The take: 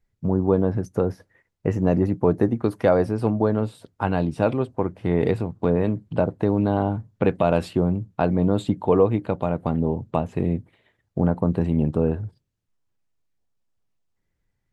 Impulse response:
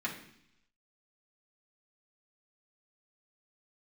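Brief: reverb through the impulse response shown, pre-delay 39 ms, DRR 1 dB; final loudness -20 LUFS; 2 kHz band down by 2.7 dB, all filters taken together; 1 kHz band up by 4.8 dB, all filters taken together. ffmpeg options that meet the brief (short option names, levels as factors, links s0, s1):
-filter_complex "[0:a]equalizer=f=1000:t=o:g=8,equalizer=f=2000:t=o:g=-8,asplit=2[s0][s1];[1:a]atrim=start_sample=2205,adelay=39[s2];[s1][s2]afir=irnorm=-1:irlink=0,volume=0.531[s3];[s0][s3]amix=inputs=2:normalize=0,volume=0.944"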